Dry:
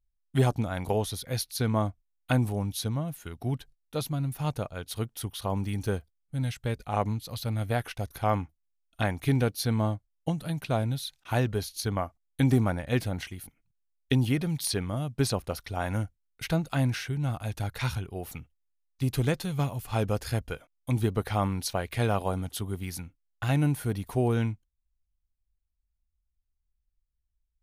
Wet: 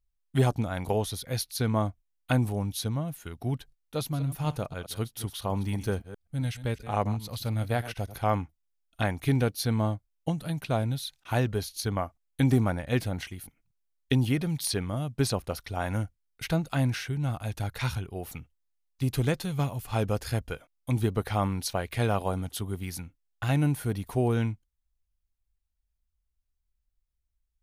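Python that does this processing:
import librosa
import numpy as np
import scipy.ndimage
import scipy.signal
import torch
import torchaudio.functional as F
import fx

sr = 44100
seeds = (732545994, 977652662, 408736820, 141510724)

y = fx.reverse_delay(x, sr, ms=128, wet_db=-13.5, at=(3.97, 8.18))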